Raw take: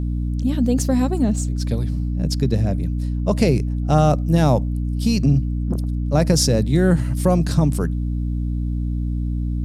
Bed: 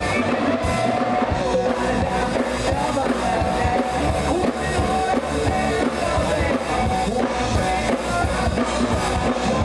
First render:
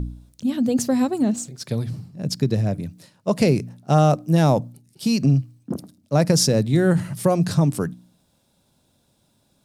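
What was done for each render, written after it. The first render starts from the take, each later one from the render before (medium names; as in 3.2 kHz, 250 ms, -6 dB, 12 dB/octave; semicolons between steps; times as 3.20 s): de-hum 60 Hz, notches 5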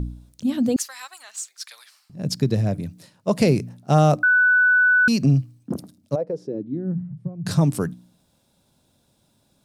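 0.76–2.10 s: high-pass 1.2 kHz 24 dB/octave; 4.23–5.08 s: bleep 1.49 kHz -13 dBFS; 6.14–7.45 s: band-pass filter 560 Hz -> 110 Hz, Q 4.8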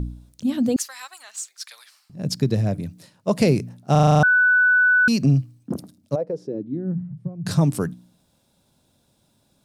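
3.91 s: stutter in place 0.04 s, 8 plays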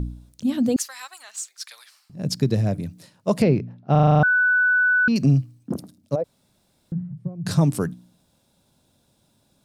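3.42–5.16 s: distance through air 310 m; 6.24–6.92 s: room tone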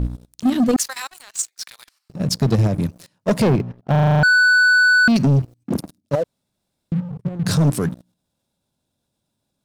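level held to a coarse grid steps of 10 dB; waveshaping leveller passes 3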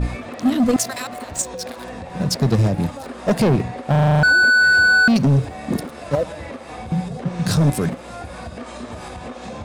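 add bed -12.5 dB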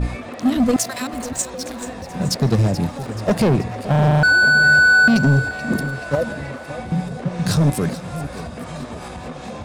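two-band feedback delay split 800 Hz, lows 567 ms, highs 431 ms, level -13 dB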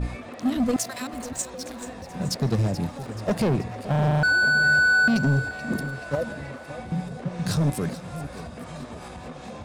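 trim -6.5 dB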